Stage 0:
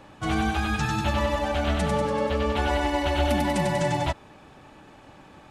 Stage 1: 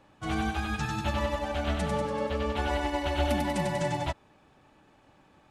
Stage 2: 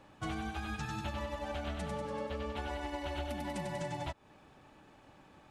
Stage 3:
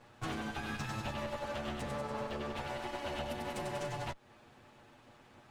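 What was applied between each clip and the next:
expander for the loud parts 1.5 to 1, over −36 dBFS; level −3 dB
downward compressor 10 to 1, threshold −36 dBFS, peak gain reduction 14 dB; level +1 dB
lower of the sound and its delayed copy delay 8.4 ms; level +1.5 dB

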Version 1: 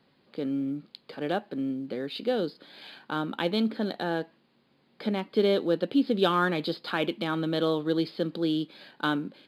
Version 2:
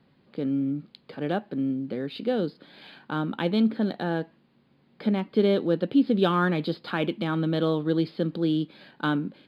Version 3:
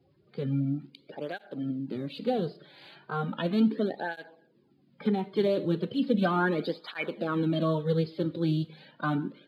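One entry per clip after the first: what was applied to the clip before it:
bass and treble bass +8 dB, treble −7 dB
spectral magnitudes quantised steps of 30 dB; four-comb reverb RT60 0.58 s, combs from 25 ms, DRR 16 dB; through-zero flanger with one copy inverted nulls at 0.36 Hz, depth 4.6 ms

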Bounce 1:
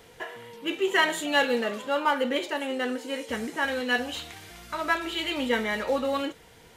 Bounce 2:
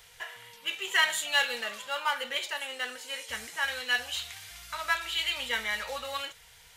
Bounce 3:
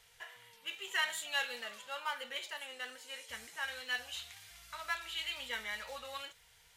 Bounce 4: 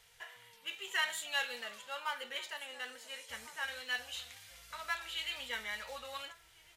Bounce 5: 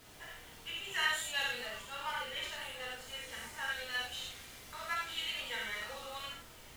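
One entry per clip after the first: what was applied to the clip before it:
guitar amp tone stack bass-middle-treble 10-0-10; level +4 dB
tape wow and flutter 28 cents; level −9 dB
slap from a distant wall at 240 metres, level −15 dB
background noise pink −56 dBFS; reverb whose tail is shaped and stops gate 130 ms flat, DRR −4.5 dB; level −4.5 dB

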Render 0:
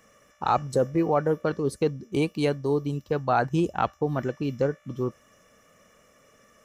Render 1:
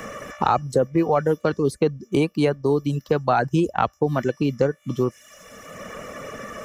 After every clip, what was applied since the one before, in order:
reverb reduction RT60 0.5 s
multiband upward and downward compressor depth 70%
level +4.5 dB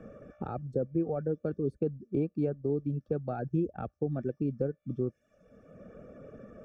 moving average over 44 samples
level −8 dB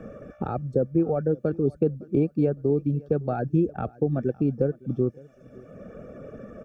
repeating echo 560 ms, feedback 34%, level −23 dB
level +7.5 dB

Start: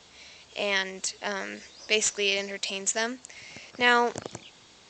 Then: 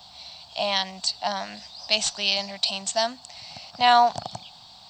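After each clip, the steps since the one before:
drawn EQ curve 180 Hz 0 dB, 440 Hz −21 dB, 730 Hz +9 dB, 1,400 Hz −6 dB, 2,100 Hz −11 dB, 4,500 Hz +9 dB, 6,800 Hz −12 dB, 10,000 Hz +14 dB
level +4 dB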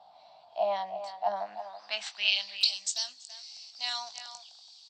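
double-tracking delay 20 ms −9 dB
band-pass filter sweep 680 Hz → 5,900 Hz, 0:01.41–0:02.81
far-end echo of a speakerphone 330 ms, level −10 dB

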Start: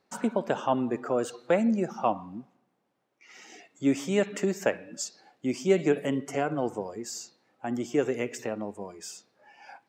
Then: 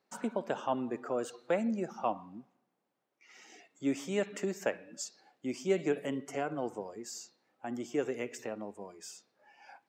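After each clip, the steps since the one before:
high-pass filter 160 Hz 6 dB per octave
level −6 dB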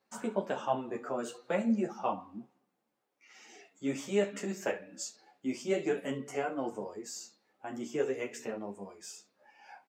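on a send: ambience of single reflections 30 ms −10 dB, 67 ms −17.5 dB
on the sum: string-ensemble chorus
level +3.5 dB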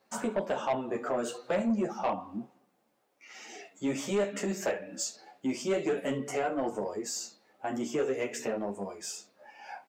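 parametric band 630 Hz +4 dB 0.48 octaves
in parallel at +3 dB: downward compressor, threshold −37 dBFS, peak gain reduction 15 dB
on the sum: soft clipping −22 dBFS, distortion −14 dB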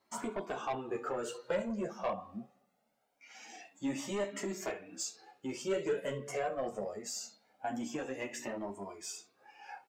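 flanger whose copies keep moving one way rising 0.23 Hz

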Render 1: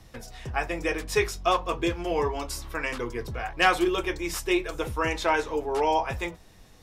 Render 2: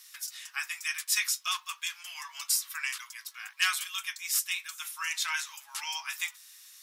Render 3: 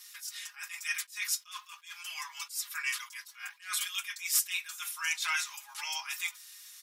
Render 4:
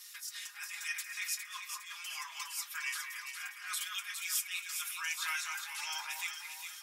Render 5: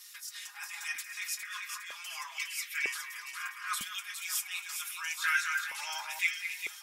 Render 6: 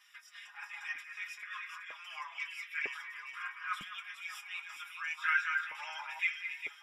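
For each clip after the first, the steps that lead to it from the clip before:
Butterworth high-pass 1,100 Hz 36 dB per octave; first difference; speech leveller within 5 dB 2 s; level +7 dB
in parallel at −8 dB: soft clipping −19 dBFS, distortion −18 dB; on the sum: comb filter 4.9 ms, depth 75%; level that may rise only so fast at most 180 dB per second; level −3 dB
downward compressor 1.5 to 1, threshold −43 dBFS, peak gain reduction 7.5 dB; on a send: delay that swaps between a low-pass and a high-pass 204 ms, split 2,000 Hz, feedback 67%, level −3 dB
high-pass on a step sequencer 2.1 Hz 210–2,100 Hz
flanger 0.55 Hz, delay 6.1 ms, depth 1.4 ms, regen −24%; Savitzky-Golay smoothing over 25 samples; level +2 dB

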